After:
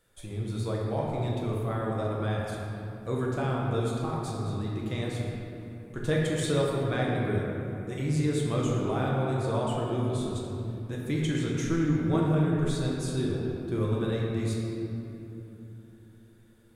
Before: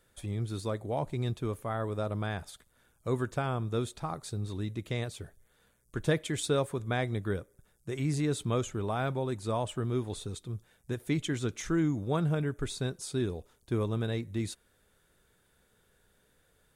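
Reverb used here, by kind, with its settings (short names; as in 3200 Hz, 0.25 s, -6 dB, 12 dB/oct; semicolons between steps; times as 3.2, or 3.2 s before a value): shoebox room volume 150 m³, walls hard, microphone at 0.65 m; gain -2.5 dB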